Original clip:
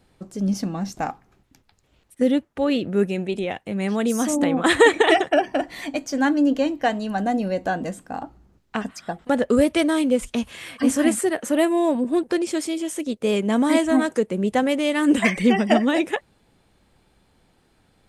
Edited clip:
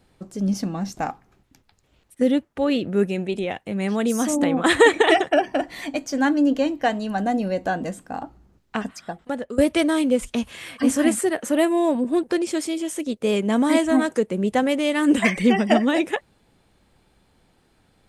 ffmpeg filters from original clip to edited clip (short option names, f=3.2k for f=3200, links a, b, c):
-filter_complex "[0:a]asplit=2[a][b];[a]atrim=end=9.58,asetpts=PTS-STARTPTS,afade=t=out:st=8.87:d=0.71:silence=0.149624[c];[b]atrim=start=9.58,asetpts=PTS-STARTPTS,afade=t=in:d=0.004:c=hsin:silence=0.149624[d];[c][d]concat=n=2:v=0:a=1"